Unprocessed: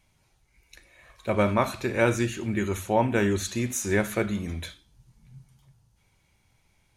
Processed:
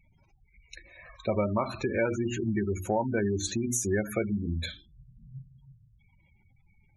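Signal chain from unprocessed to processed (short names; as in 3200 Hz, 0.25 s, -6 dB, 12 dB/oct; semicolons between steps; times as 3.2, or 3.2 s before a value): spectral gate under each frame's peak -15 dB strong; notches 60/120/180/240/300/360 Hz; compressor 3:1, threshold -32 dBFS, peak gain reduction 11 dB; gain +5 dB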